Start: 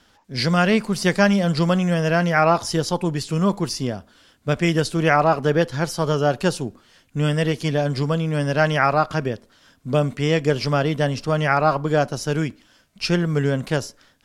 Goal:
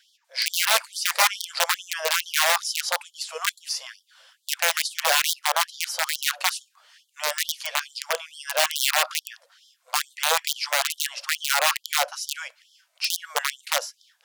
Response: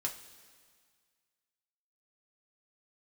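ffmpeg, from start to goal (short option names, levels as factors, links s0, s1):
-af "aeval=exprs='(mod(3.76*val(0)+1,2)-1)/3.76':c=same,aeval=exprs='val(0)+0.00631*(sin(2*PI*60*n/s)+sin(2*PI*2*60*n/s)/2+sin(2*PI*3*60*n/s)/3+sin(2*PI*4*60*n/s)/4+sin(2*PI*5*60*n/s)/5)':c=same,afftfilt=real='re*gte(b*sr/1024,470*pow(3100/470,0.5+0.5*sin(2*PI*2.3*pts/sr)))':imag='im*gte(b*sr/1024,470*pow(3100/470,0.5+0.5*sin(2*PI*2.3*pts/sr)))':win_size=1024:overlap=0.75"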